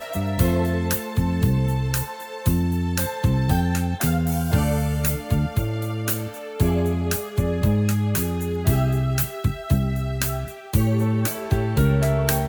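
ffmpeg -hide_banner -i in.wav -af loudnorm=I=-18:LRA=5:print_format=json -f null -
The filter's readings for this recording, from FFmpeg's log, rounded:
"input_i" : "-22.7",
"input_tp" : "-4.1",
"input_lra" : "0.9",
"input_thresh" : "-32.7",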